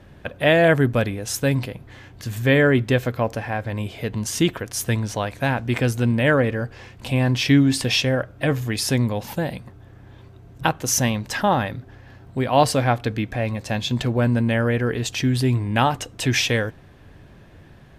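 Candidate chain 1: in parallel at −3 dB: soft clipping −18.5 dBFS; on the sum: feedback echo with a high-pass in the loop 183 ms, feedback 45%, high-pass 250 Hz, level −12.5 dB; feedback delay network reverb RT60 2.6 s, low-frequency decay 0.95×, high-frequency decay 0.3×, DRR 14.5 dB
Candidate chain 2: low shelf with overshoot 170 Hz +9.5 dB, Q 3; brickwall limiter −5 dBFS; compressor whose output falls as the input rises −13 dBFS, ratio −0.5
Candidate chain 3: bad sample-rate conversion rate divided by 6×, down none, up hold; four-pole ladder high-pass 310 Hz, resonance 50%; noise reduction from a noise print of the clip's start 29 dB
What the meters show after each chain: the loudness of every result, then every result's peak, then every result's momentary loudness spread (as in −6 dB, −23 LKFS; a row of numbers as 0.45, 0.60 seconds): −18.0, −17.0, −30.5 LKFS; −1.5, −2.0, −8.5 dBFS; 12, 13, 15 LU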